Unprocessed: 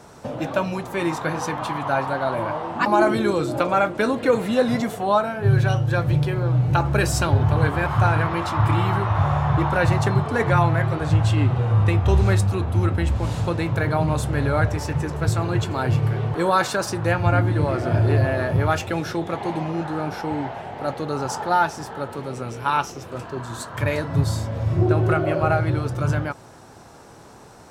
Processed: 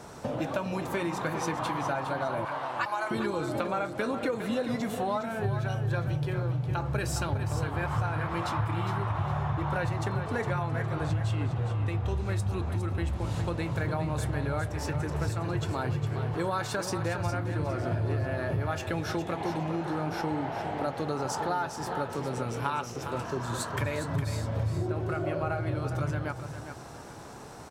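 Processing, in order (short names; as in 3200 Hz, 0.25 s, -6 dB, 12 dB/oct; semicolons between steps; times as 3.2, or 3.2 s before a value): 2.45–3.11 HPF 1000 Hz 12 dB/oct; compressor 6:1, threshold -28 dBFS, peak gain reduction 14.5 dB; feedback echo 0.409 s, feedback 27%, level -9 dB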